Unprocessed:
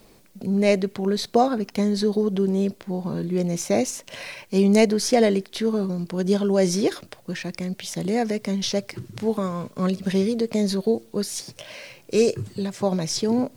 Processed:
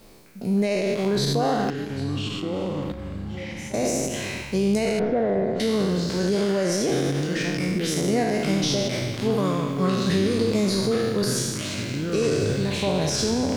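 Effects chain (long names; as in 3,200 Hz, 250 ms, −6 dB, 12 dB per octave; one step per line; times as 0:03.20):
peak hold with a decay on every bin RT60 1.30 s
0:04.99–0:05.60: Chebyshev low-pass filter 1,500 Hz, order 3
brickwall limiter −15 dBFS, peak gain reduction 11 dB
0:01.70–0:03.74: tuned comb filter 270 Hz, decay 0.58 s, harmonics all, mix 90%
delay with pitch and tempo change per echo 513 ms, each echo −6 semitones, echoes 3, each echo −6 dB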